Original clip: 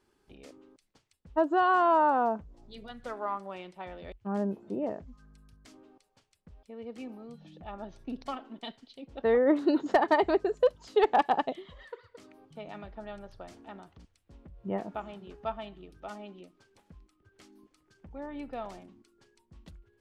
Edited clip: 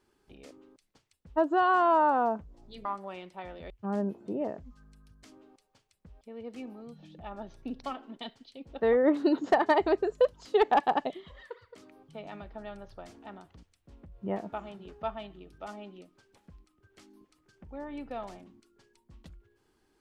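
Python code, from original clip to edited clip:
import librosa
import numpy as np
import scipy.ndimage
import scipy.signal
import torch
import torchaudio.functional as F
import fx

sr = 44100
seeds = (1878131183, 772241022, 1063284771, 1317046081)

y = fx.edit(x, sr, fx.cut(start_s=2.85, length_s=0.42), tone=tone)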